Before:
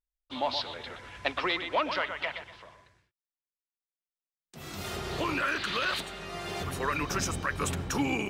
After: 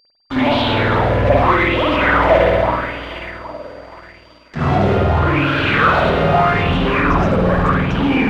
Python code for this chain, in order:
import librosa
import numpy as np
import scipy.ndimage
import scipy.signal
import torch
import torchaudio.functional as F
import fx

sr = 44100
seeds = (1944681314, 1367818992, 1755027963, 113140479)

p1 = fx.fuzz(x, sr, gain_db=51.0, gate_db=-48.0)
p2 = x + (p1 * librosa.db_to_amplitude(-5.5))
p3 = fx.bass_treble(p2, sr, bass_db=5, treble_db=8)
p4 = p3 + fx.echo_feedback(p3, sr, ms=813, feedback_pct=34, wet_db=-16.5, dry=0)
p5 = p4 + 10.0 ** (-29.0 / 20.0) * np.sin(2.0 * np.pi * 4700.0 * np.arange(len(p4)) / sr)
p6 = fx.spacing_loss(p5, sr, db_at_10k=42)
p7 = fx.rev_spring(p6, sr, rt60_s=1.1, pass_ms=(50,), chirp_ms=55, drr_db=-9.0)
p8 = fx.rider(p7, sr, range_db=4, speed_s=0.5)
p9 = fx.leveller(p8, sr, passes=1)
p10 = fx.bell_lfo(p9, sr, hz=0.81, low_hz=510.0, high_hz=3200.0, db=12)
y = p10 * librosa.db_to_amplitude(-8.0)